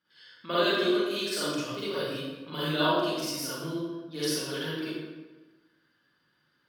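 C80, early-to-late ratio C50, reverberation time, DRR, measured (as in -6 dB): -0.5 dB, -6.0 dB, 1.2 s, -11.5 dB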